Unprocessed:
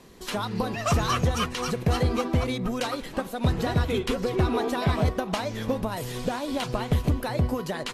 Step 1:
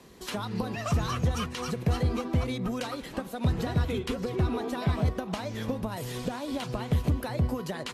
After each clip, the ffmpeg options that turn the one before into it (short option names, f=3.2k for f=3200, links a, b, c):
-filter_complex "[0:a]highpass=41,acrossover=split=250[a][b];[b]acompressor=threshold=-32dB:ratio=2.5[c];[a][c]amix=inputs=2:normalize=0,volume=-1.5dB"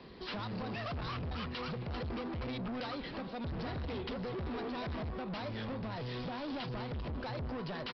-af "alimiter=limit=-22.5dB:level=0:latency=1:release=18,aresample=11025,asoftclip=type=tanh:threshold=-37.5dB,aresample=44100,volume=1dB"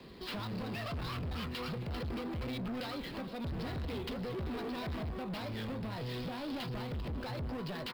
-filter_complex "[0:a]acrossover=split=510|1800[a][b][c];[b]flanger=delay=17:depth=7.9:speed=0.26[d];[c]acrusher=bits=2:mode=log:mix=0:aa=0.000001[e];[a][d][e]amix=inputs=3:normalize=0,volume=1dB"